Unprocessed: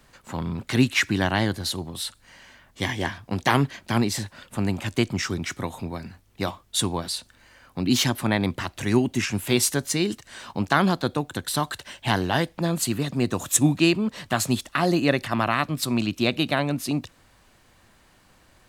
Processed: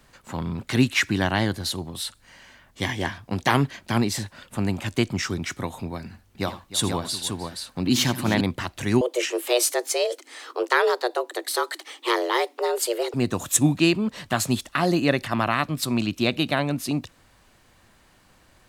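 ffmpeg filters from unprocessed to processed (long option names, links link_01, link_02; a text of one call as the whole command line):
ffmpeg -i in.wav -filter_complex "[0:a]asettb=1/sr,asplit=3[link_01][link_02][link_03];[link_01]atrim=end=6.044[link_04];[link_02]atrim=start=6.04:end=8.41,asetpts=PTS-STARTPTS,afade=type=in:duration=0.004:curve=qsin,afade=type=out:start_time=2.366:duration=0.004:curve=qsin,aecho=1:1:80|89|306|475:0.168|0.112|0.168|0.562,atrim=end_sample=104517[link_05];[link_03]atrim=start=8.406[link_06];[link_04][link_05]acrossfade=duration=0.004:curve1=hsin:curve2=qsin[link_07];[link_07][link_06]acrossfade=duration=0.004:curve1=qsin:curve2=hsin,asettb=1/sr,asplit=3[link_08][link_09][link_10];[link_08]atrim=end=9.014[link_11];[link_09]atrim=start=9.01:end=13.14,asetpts=PTS-STARTPTS,afade=type=in:duration=0.004:curve=qsin,afade=type=out:start_time=4.126:duration=0.004:curve=qsin,afreqshift=240[link_12];[link_10]atrim=start=13.136[link_13];[link_11][link_12]acrossfade=duration=0.004:curve1=hsin:curve2=qsin[link_14];[link_14][link_13]acrossfade=duration=0.004:curve1=qsin:curve2=hsin" out.wav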